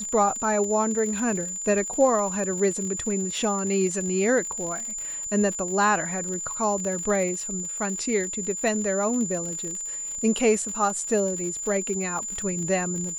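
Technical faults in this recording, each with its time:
surface crackle 64 per second −31 dBFS
whistle 7,100 Hz −30 dBFS

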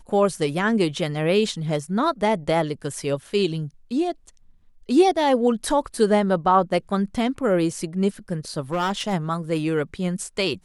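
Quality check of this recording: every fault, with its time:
0:08.72–0:09.14: clipping −19.5 dBFS

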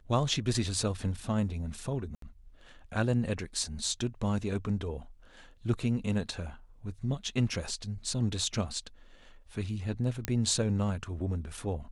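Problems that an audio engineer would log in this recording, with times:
0:02.15–0:02.22: drop-out 73 ms
0:10.25: click −14 dBFS

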